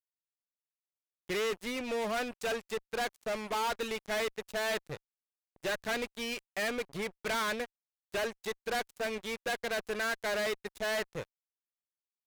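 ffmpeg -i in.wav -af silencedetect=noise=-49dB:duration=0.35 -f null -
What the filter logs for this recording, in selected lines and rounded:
silence_start: 0.00
silence_end: 1.29 | silence_duration: 1.29
silence_start: 4.97
silence_end: 5.56 | silence_duration: 0.59
silence_start: 7.66
silence_end: 8.12 | silence_duration: 0.47
silence_start: 11.24
silence_end: 12.27 | silence_duration: 1.03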